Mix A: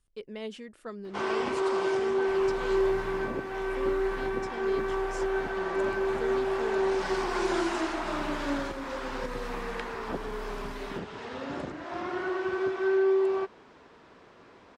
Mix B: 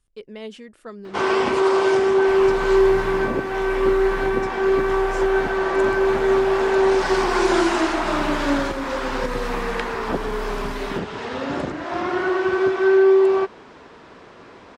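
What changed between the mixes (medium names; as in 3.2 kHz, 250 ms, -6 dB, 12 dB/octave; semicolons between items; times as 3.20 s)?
speech +3.0 dB; first sound +10.0 dB; second sound +10.0 dB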